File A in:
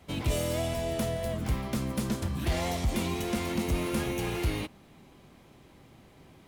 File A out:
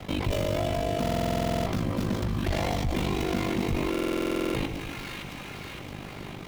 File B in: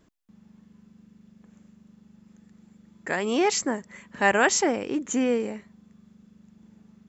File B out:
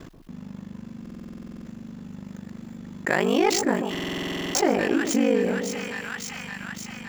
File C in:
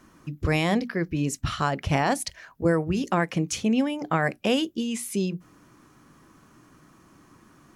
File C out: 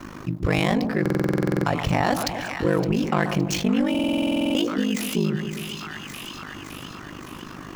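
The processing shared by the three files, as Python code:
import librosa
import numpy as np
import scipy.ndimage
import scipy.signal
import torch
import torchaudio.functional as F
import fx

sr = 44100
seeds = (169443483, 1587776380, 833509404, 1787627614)

y = scipy.ndimage.median_filter(x, 5, mode='constant')
y = fx.leveller(y, sr, passes=1)
y = y * np.sin(2.0 * np.pi * 25.0 * np.arange(len(y)) / sr)
y = fx.echo_split(y, sr, split_hz=1100.0, low_ms=132, high_ms=565, feedback_pct=52, wet_db=-12.5)
y = fx.buffer_glitch(y, sr, at_s=(1.01, 3.9), block=2048, repeats=13)
y = fx.env_flatten(y, sr, amount_pct=50)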